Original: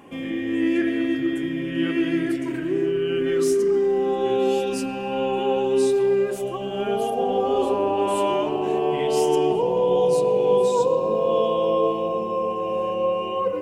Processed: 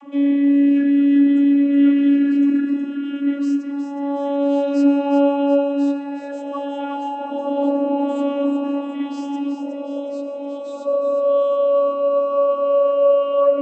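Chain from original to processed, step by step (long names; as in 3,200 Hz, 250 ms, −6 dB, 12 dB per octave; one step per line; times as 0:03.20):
speech leveller within 4 dB 0.5 s
channel vocoder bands 32, saw 282 Hz
on a send: echo with a time of its own for lows and highs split 340 Hz, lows 272 ms, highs 366 ms, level −8 dB
on the sum: level +3 dB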